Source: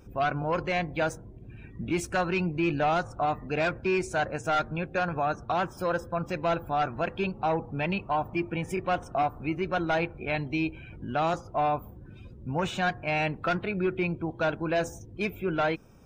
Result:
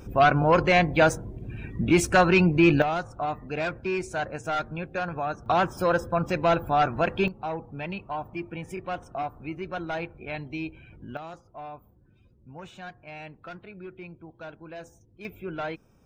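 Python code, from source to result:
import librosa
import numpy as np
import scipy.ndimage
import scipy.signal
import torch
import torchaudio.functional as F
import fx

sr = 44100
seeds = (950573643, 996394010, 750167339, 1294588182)

y = fx.gain(x, sr, db=fx.steps((0.0, 8.5), (2.82, -2.0), (5.46, 5.0), (7.28, -5.0), (11.17, -14.0), (15.25, -6.0)))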